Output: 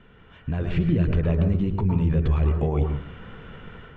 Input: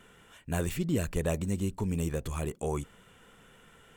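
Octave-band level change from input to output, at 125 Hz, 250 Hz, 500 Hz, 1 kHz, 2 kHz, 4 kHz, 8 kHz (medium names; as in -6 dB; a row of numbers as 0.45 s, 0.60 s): +11.5 dB, +8.0 dB, +4.5 dB, +5.0 dB, +2.5 dB, no reading, under -25 dB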